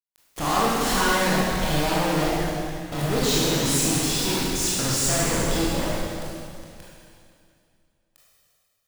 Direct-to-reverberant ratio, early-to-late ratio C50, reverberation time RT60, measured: -8.0 dB, -4.0 dB, 2.4 s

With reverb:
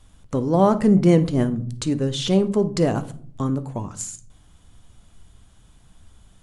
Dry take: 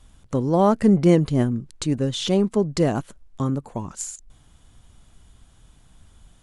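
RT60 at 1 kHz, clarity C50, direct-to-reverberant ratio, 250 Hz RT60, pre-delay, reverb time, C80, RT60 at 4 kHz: 0.45 s, 15.5 dB, 10.5 dB, 0.90 s, 10 ms, 0.55 s, 20.5 dB, 0.35 s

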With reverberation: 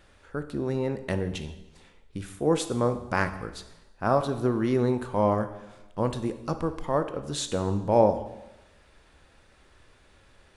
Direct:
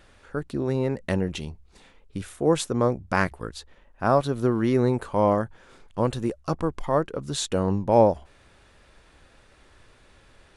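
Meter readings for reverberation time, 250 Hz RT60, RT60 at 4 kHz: 1.0 s, 0.90 s, 0.95 s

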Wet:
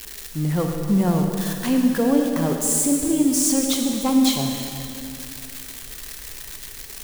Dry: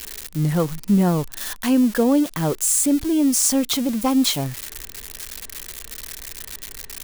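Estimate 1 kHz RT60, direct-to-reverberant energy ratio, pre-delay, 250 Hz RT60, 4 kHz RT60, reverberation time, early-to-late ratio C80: 2.6 s, 2.5 dB, 36 ms, 2.8 s, 2.3 s, 2.6 s, 3.5 dB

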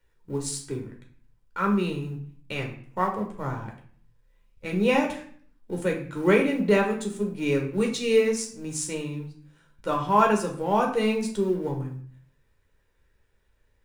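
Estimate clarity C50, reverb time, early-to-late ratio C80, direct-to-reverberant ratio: 8.0 dB, 0.50 s, 12.0 dB, 1.0 dB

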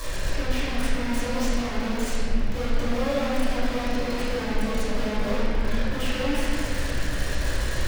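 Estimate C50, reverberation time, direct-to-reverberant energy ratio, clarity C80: -4.5 dB, 2.6 s, -13.0 dB, -2.5 dB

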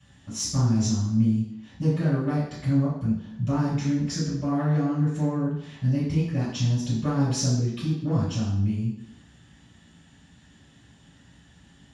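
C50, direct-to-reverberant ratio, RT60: 1.5 dB, -14.5 dB, 0.70 s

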